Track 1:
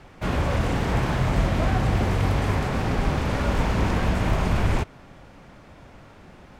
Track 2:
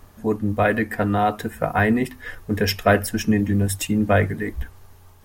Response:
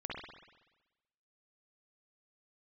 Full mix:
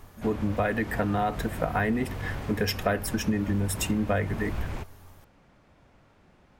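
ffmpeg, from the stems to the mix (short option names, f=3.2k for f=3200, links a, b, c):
-filter_complex "[0:a]volume=-12dB[a];[1:a]volume=-2dB[b];[a][b]amix=inputs=2:normalize=0,acompressor=threshold=-23dB:ratio=4"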